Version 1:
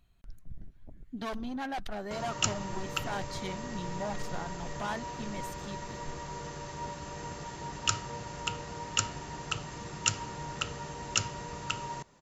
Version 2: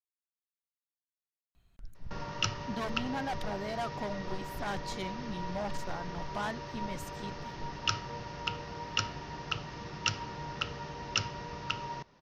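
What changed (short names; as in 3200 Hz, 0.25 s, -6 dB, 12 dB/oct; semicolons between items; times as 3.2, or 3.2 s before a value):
speech: entry +1.55 s; background: add elliptic low-pass 5600 Hz, stop band 40 dB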